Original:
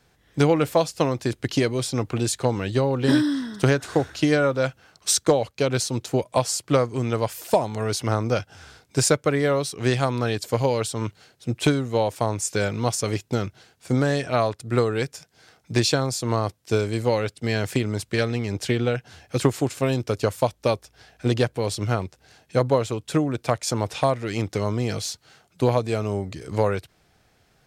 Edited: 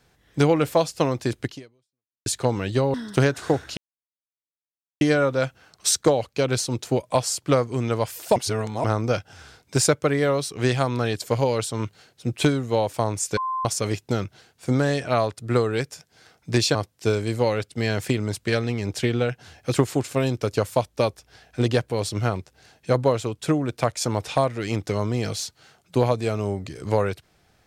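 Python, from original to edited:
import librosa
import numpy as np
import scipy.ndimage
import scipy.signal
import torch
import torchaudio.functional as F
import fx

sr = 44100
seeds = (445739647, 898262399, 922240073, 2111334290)

y = fx.edit(x, sr, fx.fade_out_span(start_s=1.44, length_s=0.82, curve='exp'),
    fx.cut(start_s=2.94, length_s=0.46),
    fx.insert_silence(at_s=4.23, length_s=1.24),
    fx.reverse_span(start_s=7.58, length_s=0.48),
    fx.bleep(start_s=12.59, length_s=0.28, hz=1040.0, db=-23.5),
    fx.cut(start_s=15.97, length_s=0.44), tone=tone)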